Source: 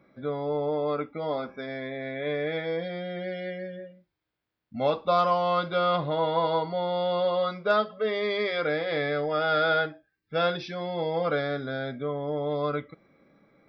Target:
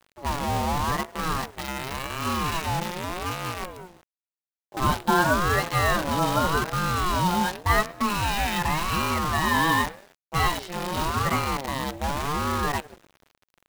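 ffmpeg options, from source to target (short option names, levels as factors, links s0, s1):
-filter_complex "[0:a]asplit=4[s0][s1][s2][s3];[s1]adelay=100,afreqshift=-130,volume=0.126[s4];[s2]adelay=200,afreqshift=-260,volume=0.0519[s5];[s3]adelay=300,afreqshift=-390,volume=0.0211[s6];[s0][s4][s5][s6]amix=inputs=4:normalize=0,acrusher=bits=6:dc=4:mix=0:aa=0.000001,aeval=exprs='val(0)*sin(2*PI*510*n/s+510*0.35/0.88*sin(2*PI*0.88*n/s))':c=same,volume=1.78"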